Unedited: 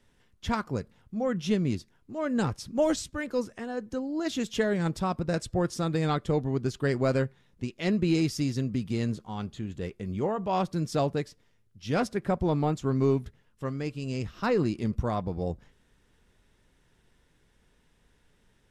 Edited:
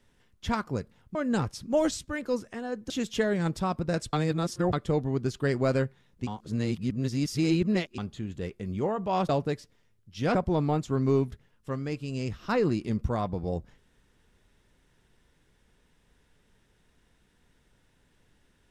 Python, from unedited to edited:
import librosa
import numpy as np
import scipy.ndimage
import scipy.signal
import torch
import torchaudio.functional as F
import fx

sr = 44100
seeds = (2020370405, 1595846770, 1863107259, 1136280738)

y = fx.edit(x, sr, fx.cut(start_s=1.15, length_s=1.05),
    fx.cut(start_s=3.95, length_s=0.35),
    fx.reverse_span(start_s=5.53, length_s=0.6),
    fx.reverse_span(start_s=7.67, length_s=1.71),
    fx.cut(start_s=10.69, length_s=0.28),
    fx.cut(start_s=12.03, length_s=0.26), tone=tone)